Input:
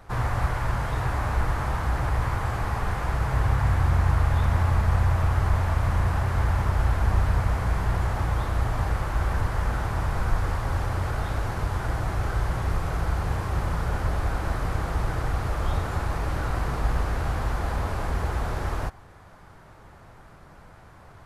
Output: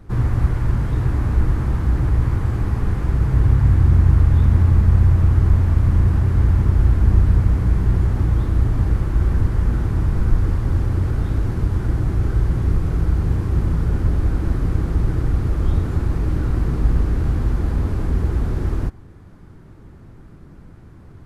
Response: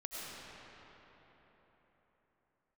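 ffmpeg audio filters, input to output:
-af "lowshelf=f=460:t=q:w=1.5:g=12,volume=-4dB"

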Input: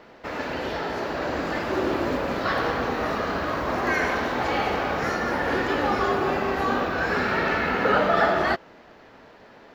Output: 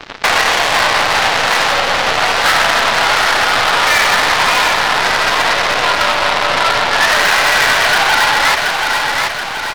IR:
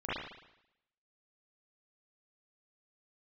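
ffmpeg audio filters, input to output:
-filter_complex "[0:a]acompressor=threshold=-38dB:ratio=5,asettb=1/sr,asplit=3[a][b][c];[a]atrim=end=4.734[d];[b]atrim=start=4.73:end=7.03,asetpts=PTS-STARTPTS,afade=t=in:d=0.004:c=qsin,afade=t=out:st=2.296:d=0.004:c=qsin,lowpass=f=1.5k:p=1[e];[c]atrim=start=7.026[f];[d][e]acrossfade=d=0.004:c1=hsin:c2=qsin[g];[g][f]acrossfade=d=0.004:c1=qsin:c2=hsin,afftdn=nr=14:nf=-51,acontrast=67,afreqshift=190,aeval=exprs='(tanh(56.2*val(0)+0.75)-tanh(0.75))/56.2':c=same,highpass=800,aeval=exprs='0.0316*(cos(1*acos(clip(val(0)/0.0316,-1,1)))-cos(1*PI/2))+0.00501*(cos(7*acos(clip(val(0)/0.0316,-1,1)))-cos(7*PI/2))':c=same,aecho=1:1:728|1456|2184|2912|3640|4368:0.376|0.199|0.106|0.056|0.0297|0.0157,alimiter=level_in=33dB:limit=-1dB:release=50:level=0:latency=1,volume=-1dB"

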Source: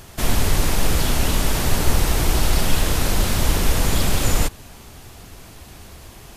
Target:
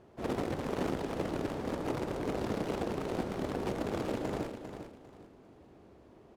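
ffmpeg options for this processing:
-filter_complex "[0:a]aeval=exprs='(mod(3.76*val(0)+1,2)-1)/3.76':c=same,bandpass=f=370:t=q:w=1.2:csg=0,asplit=2[a][b];[b]asetrate=66075,aresample=44100,atempo=0.66742,volume=-14dB[c];[a][c]amix=inputs=2:normalize=0,aecho=1:1:399|798|1197:0.355|0.0958|0.0259,volume=-7.5dB"

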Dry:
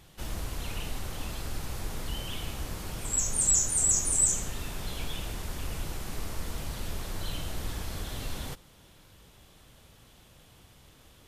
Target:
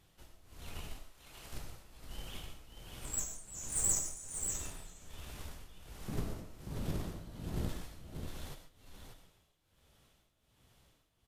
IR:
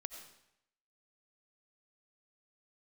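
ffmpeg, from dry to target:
-filter_complex "[0:a]tremolo=f=1.3:d=0.91,aeval=exprs='0.251*(cos(1*acos(clip(val(0)/0.251,-1,1)))-cos(1*PI/2))+0.0126*(cos(6*acos(clip(val(0)/0.251,-1,1)))-cos(6*PI/2))+0.0158*(cos(7*acos(clip(val(0)/0.251,-1,1)))-cos(7*PI/2))':c=same,asettb=1/sr,asplit=3[a][b][c];[a]atrim=end=6.084[d];[b]atrim=start=6.08:end=7.69,asetpts=PTS-STARTPTS,afade=t=in:d=0.004:c=qsin,afade=t=out:st=1.606:d=0.004:c=qsin,equalizer=f=180:w=0.31:g=14.5[e];[c]atrim=start=7.686[f];[d][e]acrossfade=d=0.004:c1=hsin:c2=qsin[g];[g][f]acrossfade=d=0.004:c1=qsin:c2=hsin,aecho=1:1:586:0.473,flanger=delay=10:depth=9.7:regen=-38:speed=0.22:shape=triangular,asettb=1/sr,asplit=3[h][i][j];[h]atrim=end=0.994[k];[i]atrim=start=0.99:end=1.53,asetpts=PTS-STARTPTS,afade=t=in:d=0.004:c=qsin,afade=t=out:st=0.536:d=0.004:c=qsin,lowshelf=f=330:g=-10[l];[j]atrim=start=1.526[m];[k][l]acrossfade=d=0.004:c1=hsin:c2=qsin[n];[n][m]acrossfade=d=0.004:c1=qsin:c2=hsin[o];[1:a]atrim=start_sample=2205,afade=t=out:st=0.2:d=0.01,atrim=end_sample=9261[p];[o][p]afir=irnorm=-1:irlink=0,volume=2dB"

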